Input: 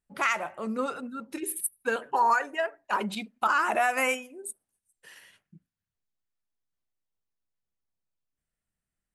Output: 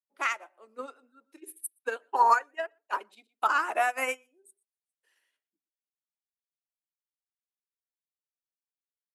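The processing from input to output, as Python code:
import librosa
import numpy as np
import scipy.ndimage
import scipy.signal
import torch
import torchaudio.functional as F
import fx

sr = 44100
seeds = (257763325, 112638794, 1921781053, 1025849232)

y = scipy.signal.sosfilt(scipy.signal.butter(8, 270.0, 'highpass', fs=sr, output='sos'), x)
y = y + 10.0 ** (-19.5 / 20.0) * np.pad(y, (int(120 * sr / 1000.0), 0))[:len(y)]
y = fx.upward_expand(y, sr, threshold_db=-37.0, expansion=2.5)
y = F.gain(torch.from_numpy(y), 3.5).numpy()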